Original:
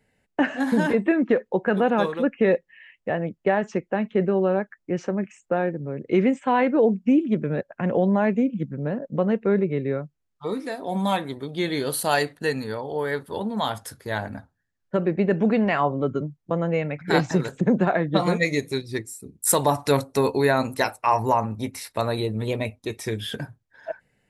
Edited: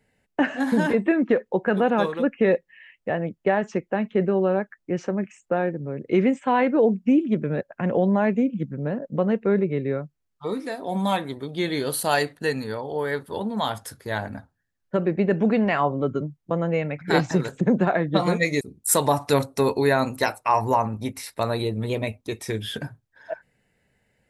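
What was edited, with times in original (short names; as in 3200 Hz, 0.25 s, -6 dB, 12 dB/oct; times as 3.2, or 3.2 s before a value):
18.61–19.19 cut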